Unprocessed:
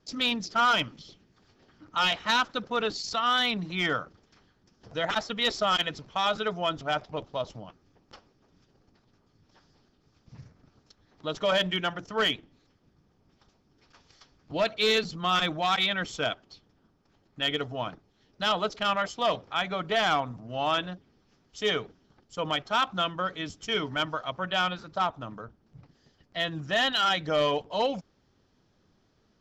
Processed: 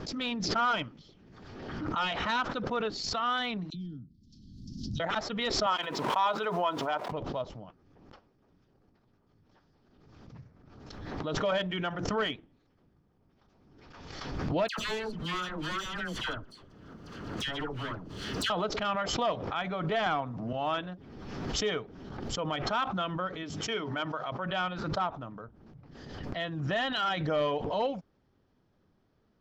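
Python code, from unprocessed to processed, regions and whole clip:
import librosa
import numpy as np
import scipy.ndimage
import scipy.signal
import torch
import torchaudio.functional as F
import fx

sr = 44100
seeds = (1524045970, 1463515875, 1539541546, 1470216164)

y = fx.chain(x, sr, fx.ellip_bandstop(low_hz=250.0, high_hz=4300.0, order=3, stop_db=40),
    fx.dispersion(late='lows', ms=43.0, hz=470.0),
    fx.env_lowpass_down(base_hz=2100.0, full_db=-38.0), at=(3.7, 5.0))
y = fx.chain(y, sr, fx.delta_hold(step_db=-52.0),
    fx.highpass(hz=310.0, slope=12),
    fx.peak_eq(hz=980.0, db=11.0, octaves=0.22), at=(5.66, 7.12))
y = fx.chain(y, sr, fx.lower_of_two(delay_ms=0.66),
    fx.dispersion(late='lows', ms=100.0, hz=1500.0),
    fx.band_squash(depth_pct=100), at=(14.68, 18.5))
y = fx.chain(y, sr, fx.high_shelf(hz=7800.0, db=-5.0),
    fx.band_squash(depth_pct=100), at=(20.06, 20.53))
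y = fx.chain(y, sr, fx.highpass(hz=190.0, slope=6),
    fx.hum_notches(base_hz=50, count=5), at=(23.43, 24.46))
y = fx.lowpass(y, sr, hz=1800.0, slope=6)
y = fx.pre_swell(y, sr, db_per_s=37.0)
y = y * librosa.db_to_amplitude(-3.0)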